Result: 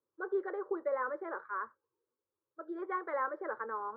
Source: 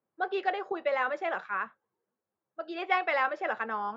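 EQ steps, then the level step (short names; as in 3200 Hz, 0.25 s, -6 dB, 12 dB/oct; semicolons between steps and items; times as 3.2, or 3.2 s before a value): LPF 1200 Hz 12 dB/oct; air absorption 150 m; fixed phaser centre 720 Hz, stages 6; 0.0 dB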